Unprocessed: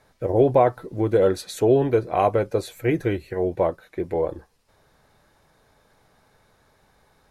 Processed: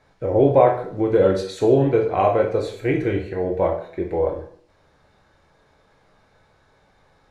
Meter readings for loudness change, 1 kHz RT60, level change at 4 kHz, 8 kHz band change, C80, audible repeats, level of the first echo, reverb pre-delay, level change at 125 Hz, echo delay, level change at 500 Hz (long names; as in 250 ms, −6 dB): +2.5 dB, 0.55 s, +0.5 dB, can't be measured, 10.5 dB, no echo audible, no echo audible, 6 ms, +2.0 dB, no echo audible, +2.5 dB